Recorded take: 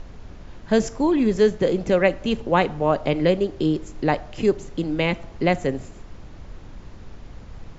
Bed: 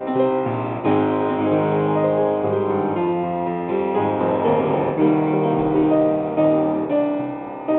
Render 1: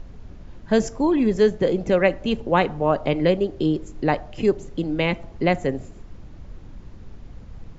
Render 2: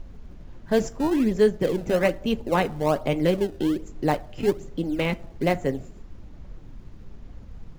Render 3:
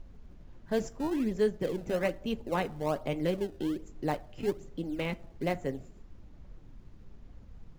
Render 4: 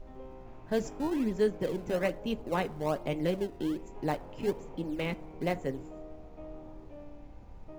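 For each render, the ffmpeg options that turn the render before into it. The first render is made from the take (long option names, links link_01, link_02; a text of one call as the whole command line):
ffmpeg -i in.wav -af "afftdn=noise_reduction=6:noise_floor=-42" out.wav
ffmpeg -i in.wav -filter_complex "[0:a]flanger=delay=3:depth=5.2:regen=-62:speed=0.81:shape=triangular,asplit=2[link_01][link_02];[link_02]acrusher=samples=23:mix=1:aa=0.000001:lfo=1:lforange=36.8:lforate=1.2,volume=-11.5dB[link_03];[link_01][link_03]amix=inputs=2:normalize=0" out.wav
ffmpeg -i in.wav -af "volume=-8.5dB" out.wav
ffmpeg -i in.wav -i bed.wav -filter_complex "[1:a]volume=-30dB[link_01];[0:a][link_01]amix=inputs=2:normalize=0" out.wav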